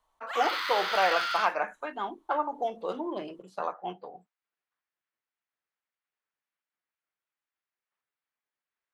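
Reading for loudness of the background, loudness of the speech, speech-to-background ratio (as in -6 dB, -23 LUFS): -31.0 LUFS, -31.0 LUFS, 0.0 dB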